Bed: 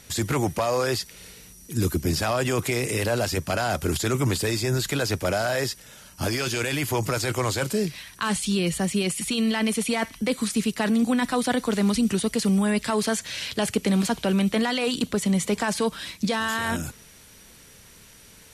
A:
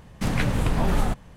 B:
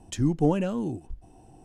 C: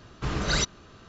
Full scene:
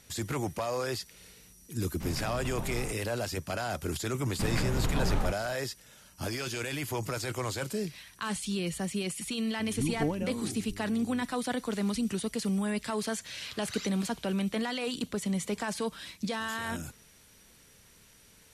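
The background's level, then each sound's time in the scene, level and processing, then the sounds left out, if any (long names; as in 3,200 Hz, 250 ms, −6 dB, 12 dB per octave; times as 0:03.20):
bed −8.5 dB
0:01.79: mix in A −15 dB
0:04.18: mix in A −6.5 dB + high-frequency loss of the air 80 metres
0:09.59: mix in B −8 dB + hum with harmonics 100 Hz, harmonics 4, −39 dBFS
0:13.22: mix in C −14 dB + high-pass filter 1,500 Hz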